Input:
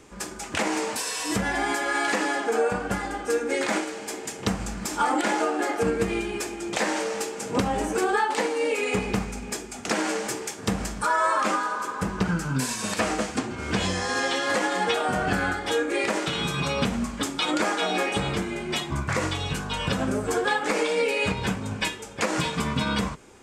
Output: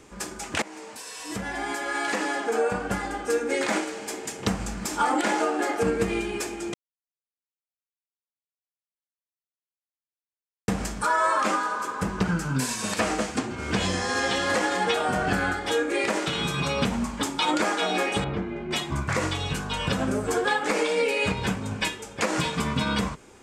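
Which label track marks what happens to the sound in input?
0.620000	3.540000	fade in equal-power, from −18.5 dB
6.740000	10.680000	silence
13.250000	14.200000	delay throw 560 ms, feedback 30%, level −10.5 dB
16.910000	17.560000	parametric band 910 Hz +9 dB 0.21 octaves
18.240000	18.710000	head-to-tape spacing loss at 10 kHz 36 dB

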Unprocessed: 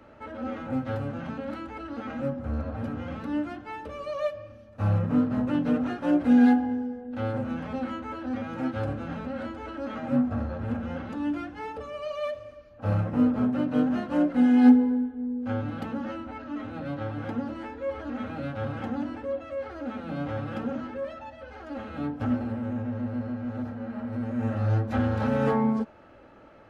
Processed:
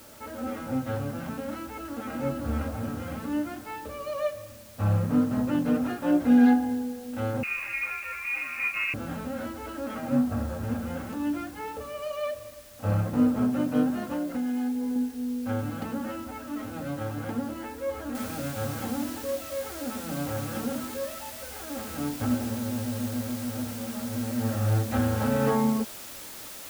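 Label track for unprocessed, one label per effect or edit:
1.620000	2.170000	delay throw 510 ms, feedback 35%, level −1 dB
7.430000	8.940000	voice inversion scrambler carrier 2,700 Hz
13.900000	14.960000	downward compressor 12 to 1, threshold −26 dBFS
18.150000	18.150000	noise floor change −52 dB −42 dB

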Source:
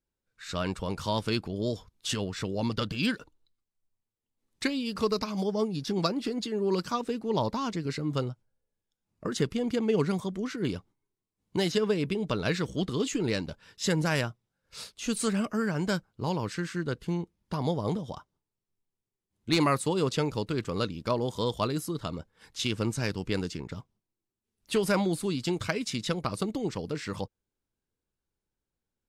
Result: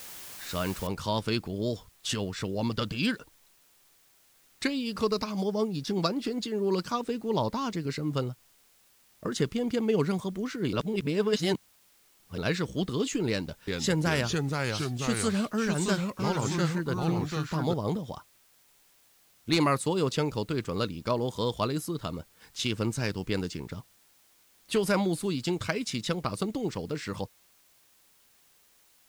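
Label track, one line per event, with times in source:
0.870000	0.870000	noise floor change −44 dB −63 dB
10.730000	12.380000	reverse
13.290000	17.740000	delay with pitch and tempo change per echo 383 ms, each echo −2 semitones, echoes 2

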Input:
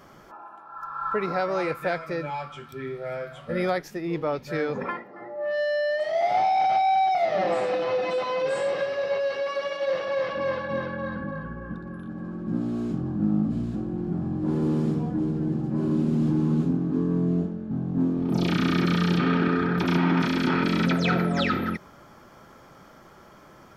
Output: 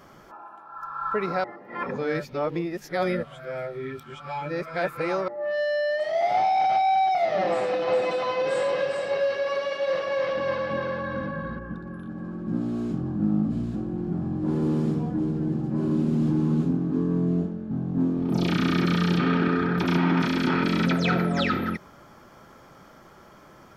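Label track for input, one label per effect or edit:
1.440000	5.280000	reverse
7.470000	11.590000	single-tap delay 405 ms −5.5 dB

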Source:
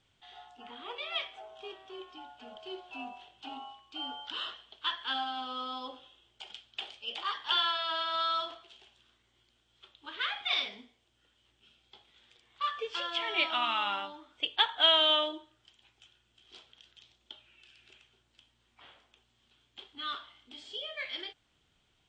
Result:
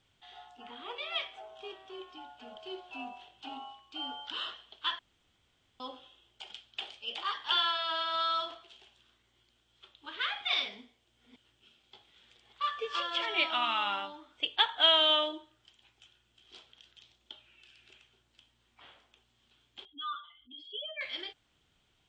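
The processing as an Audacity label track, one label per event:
4.990000	5.800000	fill with room tone
10.780000	13.260000	delay that plays each chunk backwards 291 ms, level −5.5 dB
19.850000	21.010000	expanding power law on the bin magnitudes exponent 2.5

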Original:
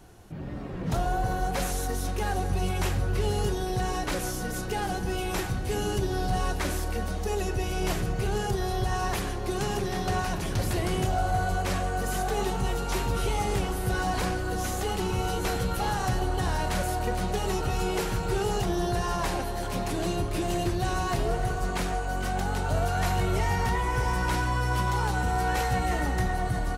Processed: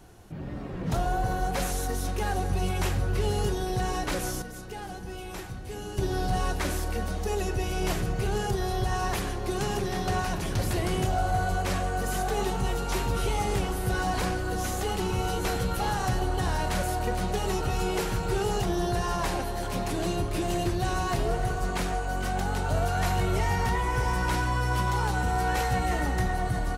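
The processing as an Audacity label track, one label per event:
4.420000	5.980000	clip gain −8.5 dB

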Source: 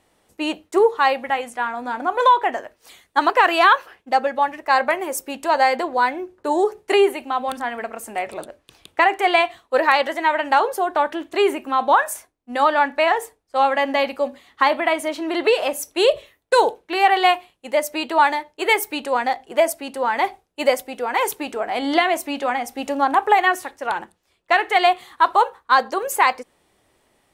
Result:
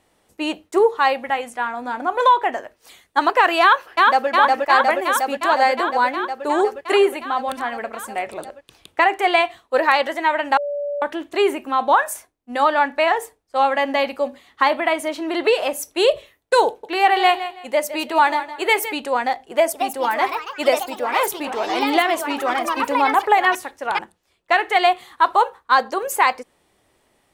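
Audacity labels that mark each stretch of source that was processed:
3.610000	4.280000	delay throw 360 ms, feedback 80%, level −1 dB
10.570000	11.020000	beep over 577 Hz −22 dBFS
16.670000	18.940000	repeating echo 162 ms, feedback 25%, level −12.5 dB
19.490000	24.550000	delay with pitch and tempo change per echo 241 ms, each echo +3 semitones, echoes 3, each echo −6 dB

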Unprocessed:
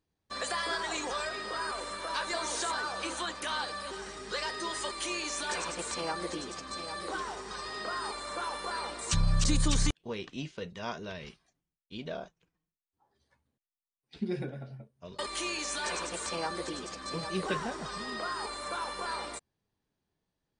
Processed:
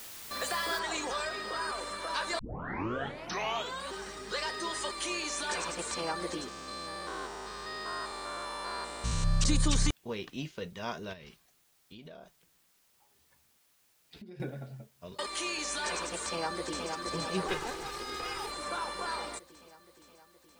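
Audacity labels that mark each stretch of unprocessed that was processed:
0.790000	0.790000	noise floor change −46 dB −69 dB
2.390000	2.390000	tape start 1.52 s
6.480000	9.410000	spectrum averaged block by block every 200 ms
11.130000	14.400000	downward compressor, threshold −46 dBFS
15.140000	15.580000	low-shelf EQ 170 Hz −7.5 dB
16.250000	16.900000	delay throw 470 ms, feedback 70%, level −4.5 dB
17.480000	18.520000	lower of the sound and its delayed copy delay 2.4 ms

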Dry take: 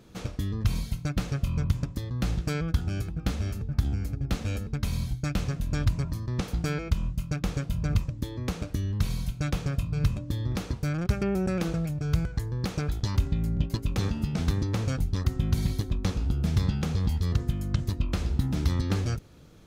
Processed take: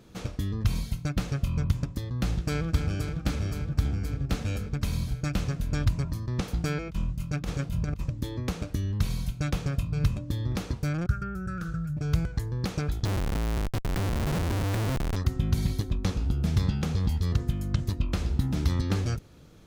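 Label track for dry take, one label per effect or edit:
2.250000	2.690000	delay throw 260 ms, feedback 85%, level −6.5 dB
6.890000	8.410000	compressor whose output falls as the input rises −28 dBFS, ratio −0.5
11.060000	11.970000	drawn EQ curve 150 Hz 0 dB, 230 Hz −14 dB, 430 Hz −15 dB, 940 Hz −22 dB, 1,400 Hz +7 dB, 2,100 Hz −17 dB, 7,100 Hz −10 dB
13.050000	15.160000	comparator with hysteresis flips at −29.5 dBFS

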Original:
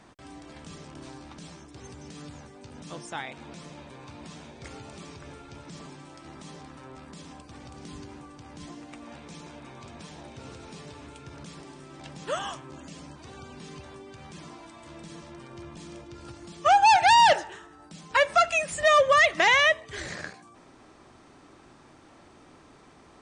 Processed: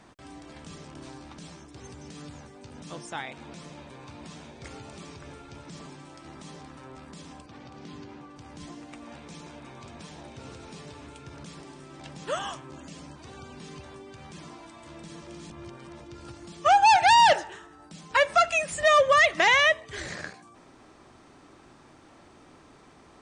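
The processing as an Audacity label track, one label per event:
7.460000	8.360000	band-pass filter 110–4,700 Hz
15.270000	16.000000	reverse

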